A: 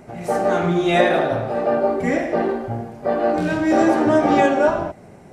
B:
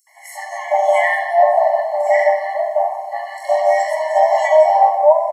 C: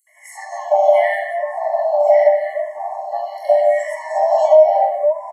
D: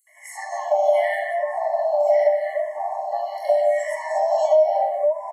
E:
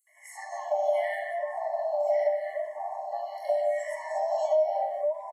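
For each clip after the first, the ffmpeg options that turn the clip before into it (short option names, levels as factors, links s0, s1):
-filter_complex "[0:a]equalizer=f=3300:w=5.1:g=-13,acrossover=split=1200|5500[s0][s1][s2];[s1]adelay=70[s3];[s0]adelay=430[s4];[s4][s3][s2]amix=inputs=3:normalize=0,afftfilt=real='re*eq(mod(floor(b*sr/1024/570),2),1)':imag='im*eq(mod(floor(b*sr/1024/570),2),1)':win_size=1024:overlap=0.75,volume=2.82"
-filter_complex "[0:a]equalizer=f=630:w=4.2:g=9.5,acompressor=threshold=0.447:ratio=2.5,asplit=2[s0][s1];[s1]afreqshift=-0.81[s2];[s0][s2]amix=inputs=2:normalize=1,volume=0.841"
-filter_complex "[0:a]acrossover=split=460|3000[s0][s1][s2];[s1]acompressor=threshold=0.0631:ratio=2.5[s3];[s0][s3][s2]amix=inputs=3:normalize=0"
-filter_complex "[0:a]asplit=2[s0][s1];[s1]adelay=380,highpass=300,lowpass=3400,asoftclip=type=hard:threshold=0.15,volume=0.0631[s2];[s0][s2]amix=inputs=2:normalize=0,volume=0.398"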